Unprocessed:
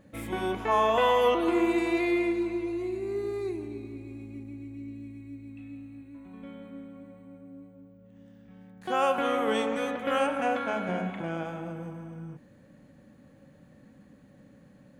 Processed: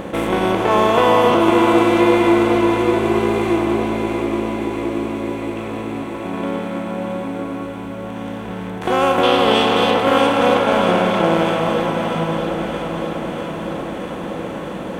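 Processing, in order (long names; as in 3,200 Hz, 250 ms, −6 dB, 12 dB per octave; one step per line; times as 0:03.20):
compressor on every frequency bin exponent 0.4
low-shelf EQ 430 Hz +6 dB
in parallel at −5 dB: dead-zone distortion −24 dBFS
0:09.23–0:09.94: on the sum: flat-topped bell 3,700 Hz +9.5 dB 1.1 octaves
delay that swaps between a low-pass and a high-pass 319 ms, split 1,300 Hz, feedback 83%, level −6 dB
level +1 dB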